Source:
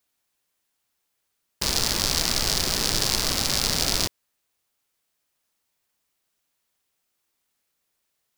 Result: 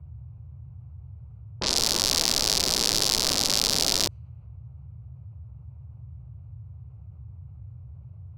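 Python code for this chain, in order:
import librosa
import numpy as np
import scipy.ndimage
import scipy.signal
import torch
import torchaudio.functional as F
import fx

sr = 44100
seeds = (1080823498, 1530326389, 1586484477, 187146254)

y = fx.wiener(x, sr, points=25)
y = fx.env_lowpass(y, sr, base_hz=1500.0, full_db=-21.0)
y = fx.low_shelf(y, sr, hz=210.0, db=-9.5)
y = fx.dmg_noise_band(y, sr, seeds[0], low_hz=65.0, high_hz=130.0, level_db=-62.0)
y = fx.env_flatten(y, sr, amount_pct=50)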